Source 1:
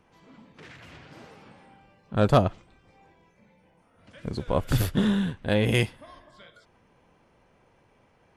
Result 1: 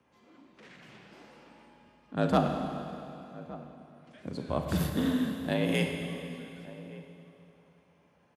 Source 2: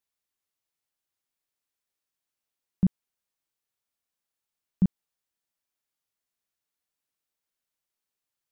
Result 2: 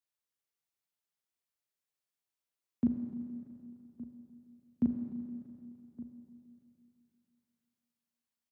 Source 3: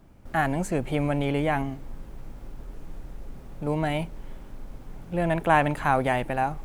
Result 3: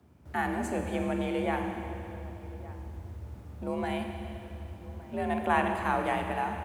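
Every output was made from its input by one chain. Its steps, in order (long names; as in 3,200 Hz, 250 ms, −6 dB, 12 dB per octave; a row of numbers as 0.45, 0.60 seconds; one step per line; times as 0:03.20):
slap from a distant wall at 200 metres, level −17 dB
four-comb reverb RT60 2.8 s, combs from 33 ms, DRR 4 dB
frequency shifter +54 Hz
level −6.5 dB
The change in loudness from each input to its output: −6.5, −9.5, −6.0 LU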